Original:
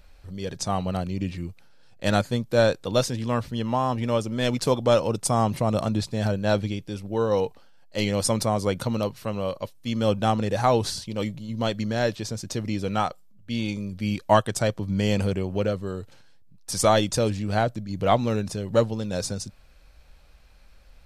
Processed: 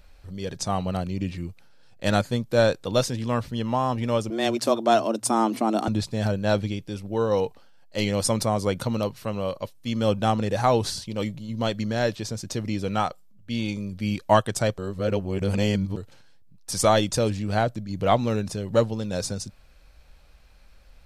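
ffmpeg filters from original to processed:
ffmpeg -i in.wav -filter_complex "[0:a]asettb=1/sr,asplit=3[link_01][link_02][link_03];[link_01]atrim=end=4.304[link_04];[link_02]atrim=start=4.3:end=5.88,asetpts=PTS-STARTPTS,afade=type=in:duration=0.004:curve=qsin,afade=type=out:start_time=1.576:duration=0.004:curve=qsin,afreqshift=110[link_05];[link_03]atrim=start=5.876[link_06];[link_04][link_05]acrossfade=duration=0.004:curve1=hsin:curve2=qsin[link_07];[link_07][link_06]acrossfade=duration=0.004:curve1=qsin:curve2=hsin,asplit=3[link_08][link_09][link_10];[link_08]atrim=end=14.782[link_11];[link_09]atrim=start=14.778:end=15.972,asetpts=PTS-STARTPTS,areverse[link_12];[link_10]atrim=start=15.968[link_13];[link_11][link_12]acrossfade=duration=0.004:curve1=hsin:curve2=hsin[link_14];[link_14][link_13]acrossfade=duration=0.004:curve1=hsin:curve2=hsin" out.wav

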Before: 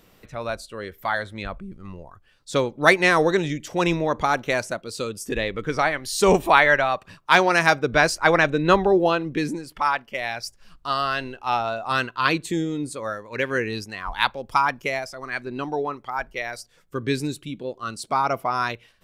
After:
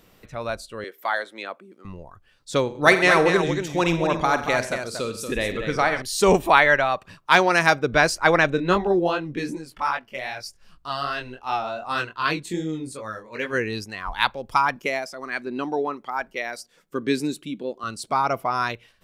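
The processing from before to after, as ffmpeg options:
ffmpeg -i in.wav -filter_complex "[0:a]asettb=1/sr,asplit=3[link_01][link_02][link_03];[link_01]atrim=end=0.844[link_04];[link_02]atrim=start=0.84:end=1.85,asetpts=PTS-STARTPTS,afade=type=in:duration=0.004:curve=qsin,afade=type=out:start_time=1.006:duration=0.004:curve=qsin,highpass=frequency=300:width=0.5412,highpass=frequency=300:width=1.3066[link_05];[link_03]atrim=start=1.846[link_06];[link_04][link_05]acrossfade=duration=0.004:curve1=hsin:curve2=qsin[link_07];[link_07][link_06]acrossfade=duration=0.004:curve1=qsin:curve2=hsin,asettb=1/sr,asplit=3[link_08][link_09][link_10];[link_08]atrim=end=2.624[link_11];[link_09]atrim=start=2.62:end=6.02,asetpts=PTS-STARTPTS,afade=type=in:duration=0.004:curve=qsin,afade=type=out:start_time=3.396:duration=0.004:curve=qsin,aecho=1:1:48|87|129|234:0.251|0.158|0.141|0.422,atrim=end_sample=149940[link_12];[link_10]atrim=start=6.016[link_13];[link_11][link_12]acrossfade=duration=0.004:curve1=hsin:curve2=qsin[link_14];[link_14][link_13]acrossfade=duration=0.004:curve1=qsin:curve2=hsin,asplit=3[link_15][link_16][link_17];[link_15]afade=type=out:start_time=8.57:duration=0.02[link_18];[link_16]flanger=delay=19:depth=4.5:speed=2.6,afade=type=in:start_time=8.57:duration=0.02,afade=type=out:start_time=13.52:duration=0.02[link_19];[link_17]afade=type=in:start_time=13.52:duration=0.02[link_20];[link_18][link_19][link_20]amix=inputs=3:normalize=0,asettb=1/sr,asplit=3[link_21][link_22][link_23];[link_21]atrim=end=14.764[link_24];[link_22]atrim=start=14.76:end=17.84,asetpts=PTS-STARTPTS,afade=type=in:duration=0.004:curve=qsin,afade=type=out:start_time=3.076:duration=0.004:curve=qsin,lowshelf=frequency=140:width_type=q:width=1.5:gain=-13[link_25];[link_23]atrim=start=17.836[link_26];[link_24][link_25]acrossfade=duration=0.004:curve1=hsin:curve2=qsin[link_27];[link_27][link_26]acrossfade=duration=0.004:curve1=qsin:curve2=hsin" out.wav

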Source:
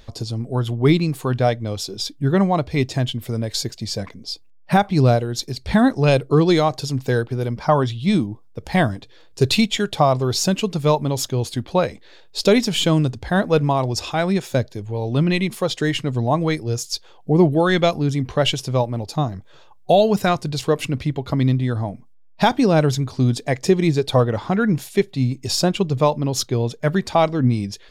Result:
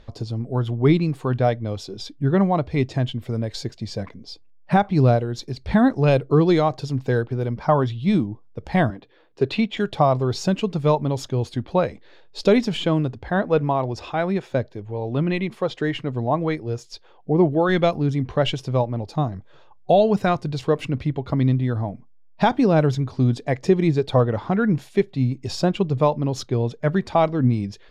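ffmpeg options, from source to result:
ffmpeg -i in.wav -filter_complex "[0:a]asettb=1/sr,asplit=3[link_01][link_02][link_03];[link_01]atrim=end=8.904[link_04];[link_02]atrim=start=8.9:end=9.77,asetpts=PTS-STARTPTS,afade=type=in:duration=0.004:curve=qsin,afade=type=out:start_time=0.866:duration=0.004:curve=qsin,acrossover=split=180 3700:gain=0.224 1 0.2[link_05][link_06][link_07];[link_05][link_06][link_07]amix=inputs=3:normalize=0[link_08];[link_03]atrim=start=9.766[link_09];[link_04][link_08]acrossfade=duration=0.004:curve1=hsin:curve2=qsin[link_10];[link_10][link_09]acrossfade=duration=0.004:curve1=qsin:curve2=hsin,asettb=1/sr,asplit=3[link_11][link_12][link_13];[link_11]atrim=end=12.774[link_14];[link_12]atrim=start=12.77:end=17.69,asetpts=PTS-STARTPTS,afade=type=in:duration=0.004:curve=qsin,afade=type=out:start_time=4.916:duration=0.004:curve=qsin,bass=frequency=250:gain=-4,treble=frequency=4000:gain=-6[link_15];[link_13]atrim=start=17.686[link_16];[link_14][link_15]acrossfade=duration=0.004:curve1=hsin:curve2=qsin[link_17];[link_17][link_16]acrossfade=duration=0.004:curve1=qsin:curve2=hsin,aemphasis=mode=reproduction:type=75fm,volume=-2dB" out.wav

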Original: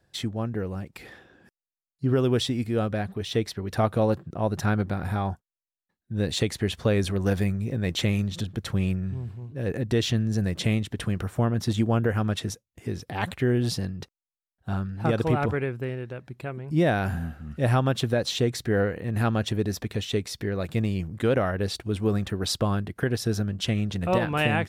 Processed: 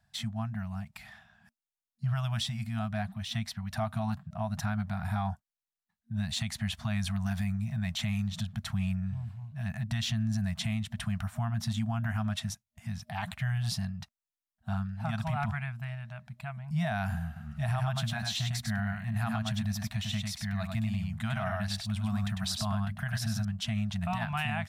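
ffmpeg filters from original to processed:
ffmpeg -i in.wav -filter_complex "[0:a]asettb=1/sr,asplit=3[link_01][link_02][link_03];[link_01]atrim=end=17.264[link_04];[link_02]atrim=start=17.26:end=23.45,asetpts=PTS-STARTPTS,afade=type=in:duration=0.004:curve=qsin,afade=type=out:start_time=6.186:duration=0.004:curve=qsin,aecho=1:1:100:0.596,atrim=end_sample=272979[link_05];[link_03]atrim=start=23.446[link_06];[link_04][link_05]acrossfade=duration=0.004:curve1=hsin:curve2=qsin[link_07];[link_07][link_06]acrossfade=duration=0.004:curve1=qsin:curve2=hsin,afftfilt=real='re*(1-between(b*sr/4096,230,620))':imag='im*(1-between(b*sr/4096,230,620))':win_size=4096:overlap=0.75,alimiter=limit=-19dB:level=0:latency=1:release=66,volume=-3.5dB" out.wav

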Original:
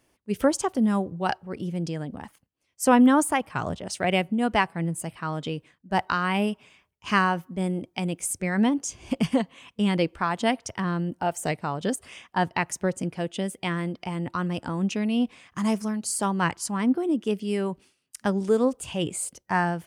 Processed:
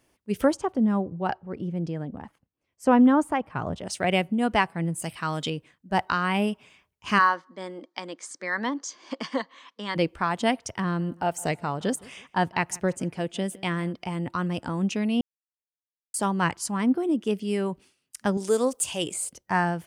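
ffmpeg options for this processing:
ffmpeg -i in.wav -filter_complex "[0:a]asplit=3[link_01][link_02][link_03];[link_01]afade=type=out:start_time=0.53:duration=0.02[link_04];[link_02]lowpass=frequency=1300:poles=1,afade=type=in:start_time=0.53:duration=0.02,afade=type=out:start_time=3.75:duration=0.02[link_05];[link_03]afade=type=in:start_time=3.75:duration=0.02[link_06];[link_04][link_05][link_06]amix=inputs=3:normalize=0,asettb=1/sr,asplit=3[link_07][link_08][link_09];[link_07]atrim=end=5.024[link_10];[link_08]atrim=start=5.02:end=5.5,asetpts=PTS-STARTPTS,afade=type=in:duration=0.004:curve=qsin,afade=type=out:start_time=0.476:duration=0.004:curve=qsin,highshelf=frequency=2200:gain=10.5[link_11];[link_09]atrim=start=5.496[link_12];[link_10][link_11]acrossfade=duration=0.004:curve1=hsin:curve2=qsin[link_13];[link_13][link_12]acrossfade=duration=0.004:curve1=qsin:curve2=hsin,asplit=3[link_14][link_15][link_16];[link_14]afade=type=out:start_time=7.18:duration=0.02[link_17];[link_15]highpass=frequency=310:width=0.5412,highpass=frequency=310:width=1.3066,equalizer=frequency=400:width_type=q:width=4:gain=-9,equalizer=frequency=720:width_type=q:width=4:gain=-6,equalizer=frequency=1100:width_type=q:width=4:gain=7,equalizer=frequency=1800:width_type=q:width=4:gain=6,equalizer=frequency=2600:width_type=q:width=4:gain=-10,equalizer=frequency=4300:width_type=q:width=4:gain=6,lowpass=frequency=6300:width=0.5412,lowpass=frequency=6300:width=1.3066,afade=type=in:start_time=7.18:duration=0.02,afade=type=out:start_time=9.95:duration=0.02[link_18];[link_16]afade=type=in:start_time=9.95:duration=0.02[link_19];[link_17][link_18][link_19]amix=inputs=3:normalize=0,asettb=1/sr,asplit=3[link_20][link_21][link_22];[link_20]atrim=end=10.844[link_23];[link_21]atrim=start=10.84:end=13.93,asetpts=PTS-STARTPTS,afade=type=in:duration=0.004:curve=qsin,afade=type=out:start_time=3.086:duration=0.004:curve=qsin,asplit=2[link_24][link_25];[link_25]adelay=164,lowpass=frequency=3600:poles=1,volume=-22.5dB,asplit=2[link_26][link_27];[link_27]adelay=164,lowpass=frequency=3600:poles=1,volume=0.38,asplit=2[link_28][link_29];[link_29]adelay=164,lowpass=frequency=3600:poles=1,volume=0.38[link_30];[link_24][link_26][link_28][link_30]amix=inputs=4:normalize=0,atrim=end_sample=136269[link_31];[link_22]atrim=start=13.926[link_32];[link_23][link_31]acrossfade=duration=0.004:curve1=hsin:curve2=qsin[link_33];[link_33][link_32]acrossfade=duration=0.004:curve1=qsin:curve2=hsin,asettb=1/sr,asplit=3[link_34][link_35][link_36];[link_34]atrim=end=18.374[link_37];[link_35]atrim=start=18.37:end=19.14,asetpts=PTS-STARTPTS,afade=type=in:duration=0.004:curve=qsin,afade=type=out:start_time=0.766:duration=0.004:curve=qsin,bass=frequency=250:gain=-9,treble=frequency=4000:gain=12[link_38];[link_36]atrim=start=19.136[link_39];[link_37][link_38]acrossfade=duration=0.004:curve1=hsin:curve2=qsin[link_40];[link_40][link_39]acrossfade=duration=0.004:curve1=qsin:curve2=hsin,asplit=3[link_41][link_42][link_43];[link_41]atrim=end=15.21,asetpts=PTS-STARTPTS,afade=type=out:start_time=15.206:duration=0.004:curve=hsin[link_44];[link_42]atrim=start=15.21:end=16.14,asetpts=PTS-STARTPTS,volume=0[link_45];[link_43]atrim=start=16.14,asetpts=PTS-STARTPTS,afade=type=in:duration=0.004:curve=hsin[link_46];[link_44][link_45][link_46]concat=n=3:v=0:a=1" out.wav

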